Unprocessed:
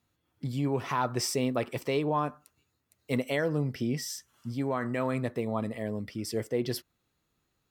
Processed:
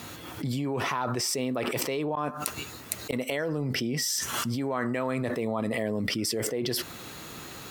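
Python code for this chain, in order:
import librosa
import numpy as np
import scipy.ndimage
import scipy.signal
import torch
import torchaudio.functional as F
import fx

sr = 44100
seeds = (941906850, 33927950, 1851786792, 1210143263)

y = fx.highpass(x, sr, hz=200.0, slope=6)
y = fx.gate_flip(y, sr, shuts_db=-26.0, range_db=-28, at=(2.15, 3.79))
y = fx.env_flatten(y, sr, amount_pct=100)
y = y * librosa.db_to_amplitude(-3.0)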